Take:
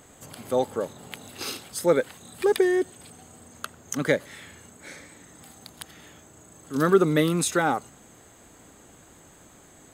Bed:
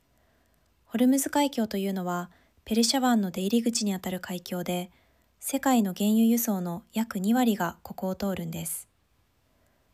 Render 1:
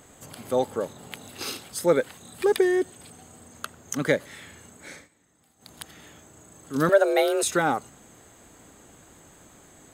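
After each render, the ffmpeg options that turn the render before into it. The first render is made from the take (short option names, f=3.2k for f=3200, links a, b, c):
-filter_complex "[0:a]asettb=1/sr,asplit=3[a][b][c];[a]atrim=end=6.894[d];[b]atrim=start=6.89:end=7.43,asetpts=PTS-STARTPTS,afade=t=in:d=0.004:c=qsin,afade=t=out:st=0.536:d=0.004:c=qsin,afreqshift=200[e];[c]atrim=start=7.426[f];[d][e]acrossfade=d=0.004:c1=hsin:c2=qsin[g];[g][f]acrossfade=d=0.004:c1=qsin:c2=hsin,asplit=3[h][i][j];[h]atrim=end=5.09,asetpts=PTS-STARTPTS,afade=t=out:st=4.95:d=0.14:silence=0.158489[k];[i]atrim=start=5.09:end=5.58,asetpts=PTS-STARTPTS,volume=-16dB[l];[j]atrim=start=5.58,asetpts=PTS-STARTPTS,afade=t=in:d=0.14:silence=0.158489[m];[k][l][m]concat=n=3:v=0:a=1"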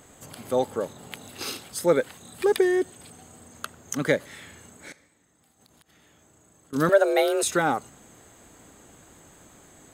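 -filter_complex "[0:a]asettb=1/sr,asplit=3[a][b][c];[a]atrim=end=4.924[d];[b]atrim=start=4.92:end=6.73,asetpts=PTS-STARTPTS,afade=t=in:d=0.004:c=qsin,afade=t=out:st=1.806:d=0.004:c=qsin,acompressor=threshold=-54dB:ratio=16:attack=3.2:release=140:knee=1:detection=peak[e];[c]atrim=start=6.726[f];[d][e]acrossfade=d=0.004:c1=hsin:c2=qsin[g];[g][f]acrossfade=d=0.004:c1=qsin:c2=hsin"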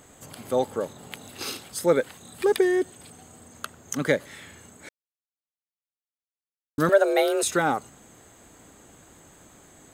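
-filter_complex "[0:a]asplit=3[a][b][c];[a]atrim=end=4.89,asetpts=PTS-STARTPTS,afade=t=out:st=4.886:d=0.004:c=hsin[d];[b]atrim=start=4.89:end=6.78,asetpts=PTS-STARTPTS,volume=0[e];[c]atrim=start=6.78,asetpts=PTS-STARTPTS,afade=t=in:d=0.004:c=hsin[f];[d][e][f]concat=n=3:v=0:a=1"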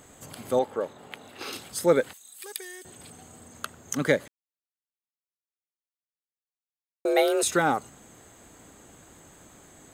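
-filter_complex "[0:a]asettb=1/sr,asplit=3[a][b][c];[a]atrim=end=0.594[d];[b]atrim=start=0.59:end=1.53,asetpts=PTS-STARTPTS,afade=t=in:d=0.004:c=qsin,afade=t=out:st=0.936:d=0.004:c=qsin,bass=f=250:g=-9,treble=f=4k:g=-11[e];[c]atrim=start=1.526[f];[d][e]acrossfade=d=0.004:c1=hsin:c2=qsin[g];[g][f]acrossfade=d=0.004:c1=qsin:c2=hsin,asettb=1/sr,asplit=3[h][i][j];[h]atrim=end=2.134[k];[i]atrim=start=2.13:end=2.85,asetpts=PTS-STARTPTS,afade=t=in:d=0.004:c=qsin,afade=t=out:st=0.716:d=0.004:c=qsin,aderivative[l];[j]atrim=start=2.846[m];[k][l]acrossfade=d=0.004:c1=hsin:c2=qsin[n];[n][m]acrossfade=d=0.004:c1=qsin:c2=hsin,asplit=3[o][p][q];[o]atrim=end=4.28,asetpts=PTS-STARTPTS,afade=t=out:st=4.276:d=0.004:c=hsin[r];[p]atrim=start=4.28:end=7.05,asetpts=PTS-STARTPTS,volume=0[s];[q]atrim=start=7.05,asetpts=PTS-STARTPTS,afade=t=in:d=0.004:c=hsin[t];[r][s][t]concat=n=3:v=0:a=1"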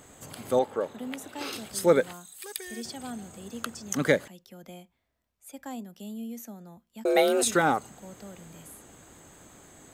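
-filter_complex "[1:a]volume=-15.5dB[a];[0:a][a]amix=inputs=2:normalize=0"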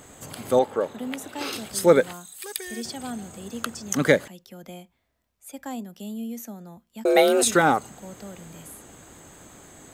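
-af "volume=4.5dB"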